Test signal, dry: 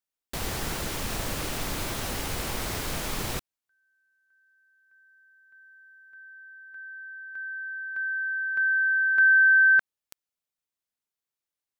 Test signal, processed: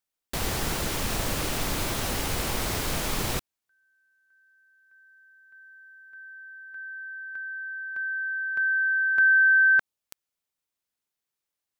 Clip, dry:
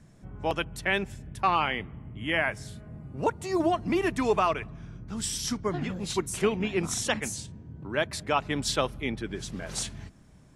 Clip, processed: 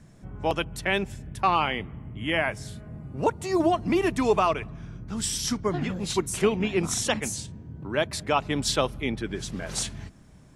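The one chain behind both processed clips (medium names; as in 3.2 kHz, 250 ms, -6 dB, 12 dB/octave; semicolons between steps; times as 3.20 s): dynamic bell 1.7 kHz, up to -4 dB, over -38 dBFS, Q 1.6; trim +3 dB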